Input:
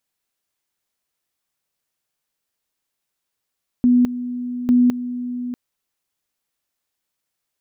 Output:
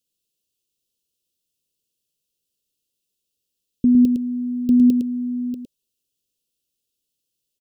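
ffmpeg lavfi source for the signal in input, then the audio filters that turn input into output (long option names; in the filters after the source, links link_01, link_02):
-f lavfi -i "aevalsrc='pow(10,(-10.5-13*gte(mod(t,0.85),0.21))/20)*sin(2*PI*246*t)':duration=1.7:sample_rate=44100"
-filter_complex "[0:a]asuperstop=centerf=1200:order=20:qfactor=0.58,asplit=2[link_01][link_02];[link_02]aecho=0:1:109:0.473[link_03];[link_01][link_03]amix=inputs=2:normalize=0"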